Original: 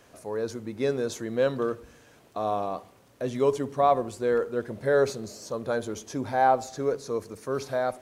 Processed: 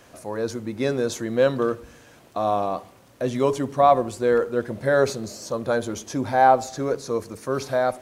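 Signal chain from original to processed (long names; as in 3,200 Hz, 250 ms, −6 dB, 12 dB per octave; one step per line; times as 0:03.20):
notch filter 430 Hz, Q 12
level +5.5 dB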